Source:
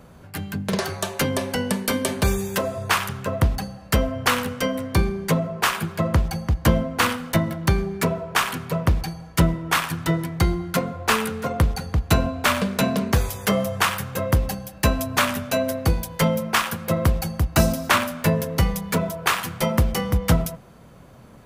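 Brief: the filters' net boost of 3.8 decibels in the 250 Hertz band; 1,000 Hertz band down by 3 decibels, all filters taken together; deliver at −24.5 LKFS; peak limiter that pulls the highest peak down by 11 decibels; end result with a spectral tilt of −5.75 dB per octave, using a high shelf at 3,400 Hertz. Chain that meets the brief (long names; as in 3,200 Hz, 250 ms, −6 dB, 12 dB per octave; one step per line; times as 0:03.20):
parametric band 250 Hz +5.5 dB
parametric band 1,000 Hz −3.5 dB
high-shelf EQ 3,400 Hz −5.5 dB
level +1 dB
brickwall limiter −13 dBFS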